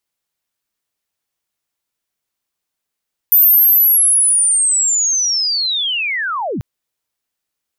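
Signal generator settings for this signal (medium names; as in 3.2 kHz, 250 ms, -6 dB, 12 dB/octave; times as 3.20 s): sweep linear 14 kHz -> 77 Hz -6 dBFS -> -18.5 dBFS 3.29 s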